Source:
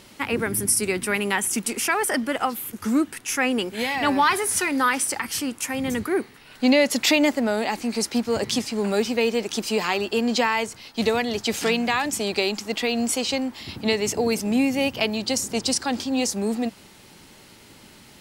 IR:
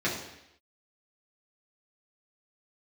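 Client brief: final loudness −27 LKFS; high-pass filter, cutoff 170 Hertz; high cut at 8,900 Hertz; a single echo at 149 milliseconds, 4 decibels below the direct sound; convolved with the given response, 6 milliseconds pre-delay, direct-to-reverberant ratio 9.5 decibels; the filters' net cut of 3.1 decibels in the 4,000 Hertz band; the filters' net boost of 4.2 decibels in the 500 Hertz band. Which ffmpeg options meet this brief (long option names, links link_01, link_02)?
-filter_complex "[0:a]highpass=170,lowpass=8900,equalizer=frequency=500:width_type=o:gain=5,equalizer=frequency=4000:width_type=o:gain=-4,aecho=1:1:149:0.631,asplit=2[link_01][link_02];[1:a]atrim=start_sample=2205,adelay=6[link_03];[link_02][link_03]afir=irnorm=-1:irlink=0,volume=-20dB[link_04];[link_01][link_04]amix=inputs=2:normalize=0,volume=-6.5dB"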